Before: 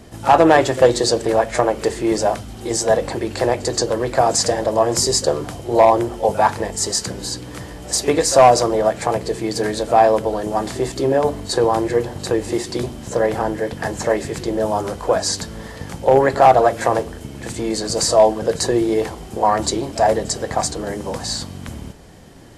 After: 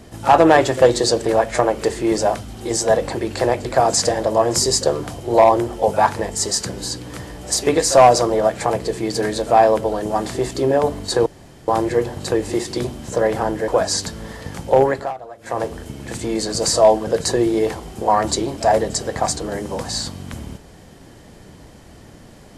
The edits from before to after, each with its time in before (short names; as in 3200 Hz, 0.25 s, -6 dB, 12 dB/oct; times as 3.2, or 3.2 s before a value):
3.65–4.06 cut
11.67 insert room tone 0.42 s
13.67–15.03 cut
16.11–17.11 dip -22.5 dB, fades 0.38 s linear